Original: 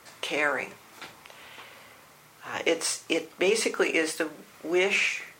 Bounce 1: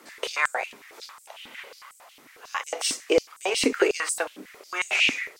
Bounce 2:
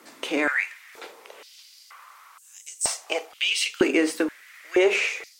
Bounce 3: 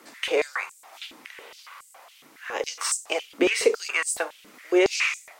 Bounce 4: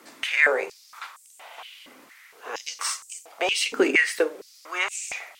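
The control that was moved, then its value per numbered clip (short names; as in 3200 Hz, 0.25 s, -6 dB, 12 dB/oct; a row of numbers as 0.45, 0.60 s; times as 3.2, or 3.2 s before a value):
stepped high-pass, rate: 11, 2.1, 7.2, 4.3 Hz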